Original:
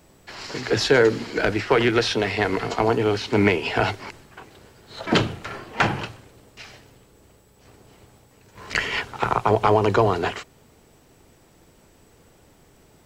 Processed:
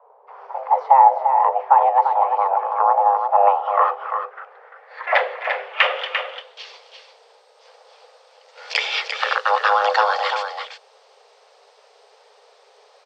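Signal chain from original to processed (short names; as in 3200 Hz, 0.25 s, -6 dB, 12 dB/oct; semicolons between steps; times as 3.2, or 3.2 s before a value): low-pass sweep 570 Hz -> 4300 Hz, 3.24–6.87; frequency shift +400 Hz; tapped delay 0.257/0.345 s -20/-7 dB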